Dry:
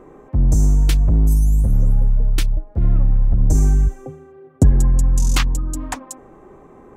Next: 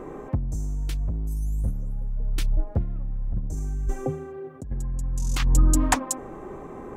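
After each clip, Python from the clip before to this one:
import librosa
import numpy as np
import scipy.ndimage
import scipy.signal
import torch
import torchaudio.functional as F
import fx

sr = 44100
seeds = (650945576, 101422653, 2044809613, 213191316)

y = fx.over_compress(x, sr, threshold_db=-19.0, ratio=-0.5)
y = y * 10.0 ** (-2.0 / 20.0)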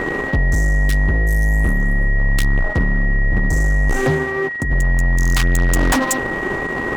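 y = fx.fuzz(x, sr, gain_db=32.0, gate_db=-41.0)
y = y + 10.0 ** (-23.0 / 20.0) * np.sin(2.0 * np.pi * 1900.0 * np.arange(len(y)) / sr)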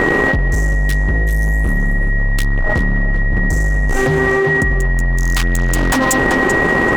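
y = fx.echo_tape(x, sr, ms=386, feedback_pct=32, wet_db=-8.5, lp_hz=3900.0, drive_db=7.0, wow_cents=16)
y = fx.env_flatten(y, sr, amount_pct=100)
y = y * 10.0 ** (-1.0 / 20.0)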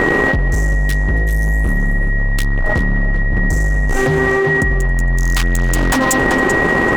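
y = x + 10.0 ** (-24.0 / 20.0) * np.pad(x, (int(274 * sr / 1000.0), 0))[:len(x)]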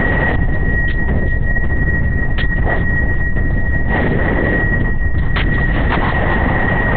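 y = fx.lpc_vocoder(x, sr, seeds[0], excitation='whisper', order=8)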